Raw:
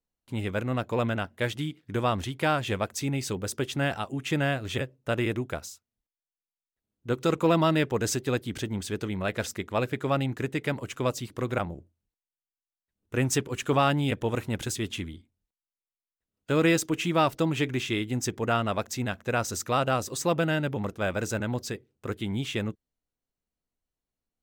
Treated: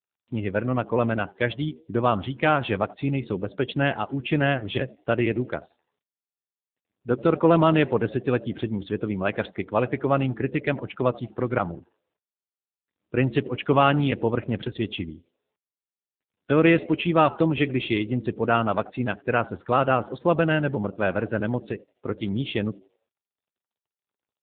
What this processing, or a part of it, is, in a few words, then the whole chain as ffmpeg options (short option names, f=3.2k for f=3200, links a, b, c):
mobile call with aggressive noise cancelling: -filter_complex "[0:a]asettb=1/sr,asplit=3[a][b][c];[a]atrim=end=18.384[d];[b]atrim=start=18.38:end=20.36,asetpts=PTS-STARTPTS,afade=t=in:d=0.004:c=qsin,afade=t=out:st=1.976:d=0.004:c=qsin,highshelf=f=6.4k:g=-4[e];[c]atrim=start=20.356[f];[d][e]acrossfade=d=0.004:c1=hsin:c2=qsin[g];[g][f]acrossfade=d=0.004:c1=qsin:c2=hsin,asplit=5[h][i][j][k][l];[i]adelay=86,afreqshift=86,volume=-21dB[m];[j]adelay=172,afreqshift=172,volume=-26.7dB[n];[k]adelay=258,afreqshift=258,volume=-32.4dB[o];[l]adelay=344,afreqshift=344,volume=-38dB[p];[h][m][n][o][p]amix=inputs=5:normalize=0,highpass=f=110:p=1,afftdn=nr=15:nf=-40,volume=5.5dB" -ar 8000 -c:a libopencore_amrnb -b:a 7950